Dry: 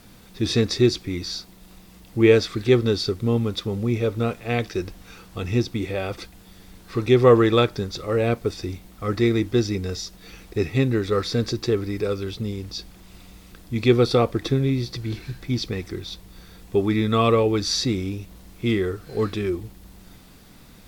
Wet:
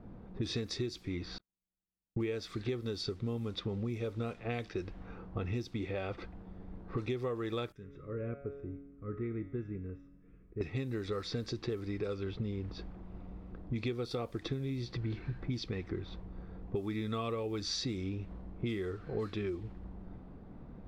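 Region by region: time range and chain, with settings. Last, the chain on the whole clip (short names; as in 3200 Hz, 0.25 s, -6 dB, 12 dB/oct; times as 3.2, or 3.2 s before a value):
1.38–2.2 elliptic low-pass 4100 Hz, stop band 50 dB + gate -39 dBFS, range -49 dB
7.72–10.61 fixed phaser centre 1900 Hz, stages 4 + resonator 140 Hz, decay 1.2 s, mix 80%
whole clip: low-pass opened by the level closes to 690 Hz, open at -17 dBFS; compressor 12:1, threshold -33 dBFS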